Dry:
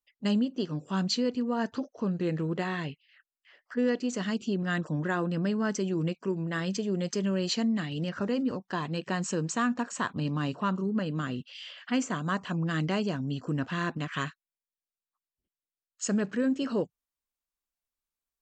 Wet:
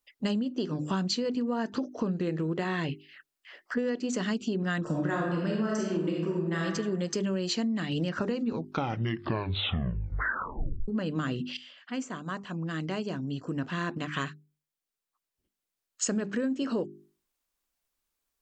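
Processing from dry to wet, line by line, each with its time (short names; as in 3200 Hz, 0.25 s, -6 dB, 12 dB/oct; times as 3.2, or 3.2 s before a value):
4.82–6.63 reverb throw, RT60 0.93 s, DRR -3 dB
8.28 tape stop 2.60 s
11.57–16.04 fade in quadratic, from -15 dB
whole clip: bell 330 Hz +3 dB 0.77 oct; notches 50/100/150/200/250/300/350/400 Hz; compressor 10:1, threshold -35 dBFS; gain +8.5 dB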